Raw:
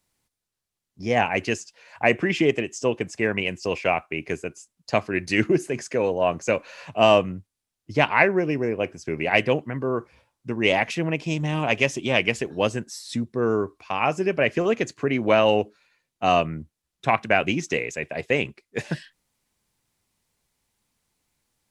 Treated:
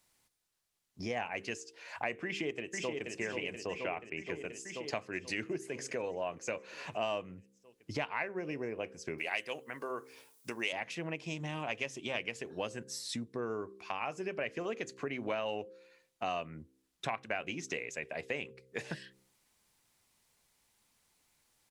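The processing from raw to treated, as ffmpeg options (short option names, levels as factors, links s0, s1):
-filter_complex "[0:a]asplit=2[s0][s1];[s1]afade=t=in:st=2.25:d=0.01,afade=t=out:st=3.13:d=0.01,aecho=0:1:480|960|1440|1920|2400|2880|3360|3840|4320|4800:0.562341|0.365522|0.237589|0.154433|0.100381|0.0652479|0.0424112|0.0275673|0.0179187|0.0116472[s2];[s0][s2]amix=inputs=2:normalize=0,asettb=1/sr,asplit=3[s3][s4][s5];[s3]atrim=end=3.634[s6];[s4]atrim=start=3.63:end=4.44,asetpts=PTS-STARTPTS,afade=t=in:d=0.004:c=qsin,afade=t=out:st=0.806:d=0.004:c=qsin,bass=f=250:g=1,treble=f=4000:g=-10[s7];[s5]atrim=start=4.436[s8];[s6][s7]acrossfade=d=0.004:c1=hsin:c2=qsin[s9];[s9][s8]acrossfade=d=0.004:c1=qsin:c2=hsin,asettb=1/sr,asplit=3[s10][s11][s12];[s10]atrim=end=9.184[s13];[s11]atrim=start=9.18:end=10.73,asetpts=PTS-STARTPTS,afade=t=in:d=0.004:c=qsin,afade=t=out:st=1.546:d=0.004:c=qsin,aemphasis=mode=production:type=riaa[s14];[s12]atrim=start=10.726[s15];[s13][s14]acrossfade=d=0.004:c1=hsin:c2=qsin[s16];[s16][s15]acrossfade=d=0.004:c1=qsin:c2=hsin,lowshelf=f=350:g=-7,bandreject=f=65.33:t=h:w=4,bandreject=f=130.66:t=h:w=4,bandreject=f=195.99:t=h:w=4,bandreject=f=261.32:t=h:w=4,bandreject=f=326.65:t=h:w=4,bandreject=f=391.98:t=h:w=4,bandreject=f=457.31:t=h:w=4,bandreject=f=522.64:t=h:w=4,acompressor=threshold=0.00794:ratio=3,volume=1.33"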